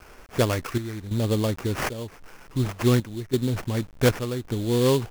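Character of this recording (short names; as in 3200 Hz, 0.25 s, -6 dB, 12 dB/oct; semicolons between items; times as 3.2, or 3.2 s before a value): a quantiser's noise floor 8-bit, dither none; chopped level 0.9 Hz, depth 65%, duty 70%; aliases and images of a low sample rate 3900 Hz, jitter 20%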